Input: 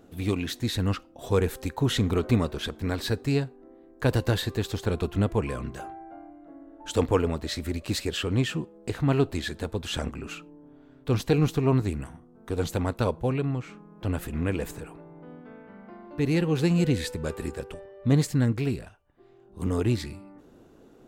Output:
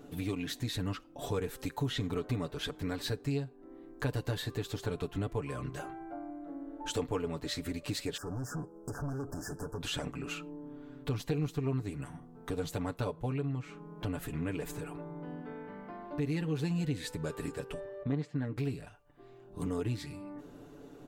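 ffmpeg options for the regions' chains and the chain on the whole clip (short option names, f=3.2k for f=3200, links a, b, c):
-filter_complex "[0:a]asettb=1/sr,asplit=3[a][b][c];[a]atrim=end=1.594[d];[b]atrim=start=1.59:end=2.07,asetpts=PTS-STARTPTS,afade=t=in:d=0.004:c=qsin,afade=t=out:st=0.476:d=0.004:c=qsin,highshelf=f=5.1k:g=9.5,acrossover=split=4800[e][f];[f]acompressor=threshold=-45dB:ratio=4:attack=1:release=60[g];[e][g]amix=inputs=2:normalize=0[h];[c]atrim=start=2.066[i];[d][h]acrossfade=d=0.004:c1=hsin:c2=qsin[j];[j][i]acrossfade=d=0.004:c1=qsin:c2=hsin,asettb=1/sr,asplit=3[k][l][m];[k]atrim=end=8.174[n];[l]atrim=start=8.17:end=9.81,asetpts=PTS-STARTPTS,afade=t=in:d=0.004:c=qsin,afade=t=out:st=1.636:d=0.004:c=qsin,acompressor=threshold=-29dB:ratio=2:attack=3.2:release=140:knee=1:detection=peak,asoftclip=type=hard:threshold=-34dB,asuperstop=centerf=2900:order=20:qfactor=0.86[o];[m]atrim=start=9.806[p];[n][o]acrossfade=d=0.004:c1=hsin:c2=qsin[q];[q][p]acrossfade=d=0.004:c1=qsin:c2=hsin,asettb=1/sr,asplit=3[r][s][t];[r]atrim=end=18.034[u];[s]atrim=start=18.03:end=18.57,asetpts=PTS-STARTPTS,afade=t=in:d=0.004:c=qsin,afade=t=out:st=0.536:d=0.004:c=qsin,highpass=160,lowpass=2.7k,agate=range=-33dB:threshold=-44dB:ratio=3:release=100:detection=peak[v];[t]atrim=start=18.566[w];[u][v]acrossfade=d=0.004:c1=hsin:c2=qsin[x];[x][w]acrossfade=d=0.004:c1=qsin:c2=hsin,aecho=1:1:6.9:0.67,acompressor=threshold=-38dB:ratio=2.5,volume=1dB"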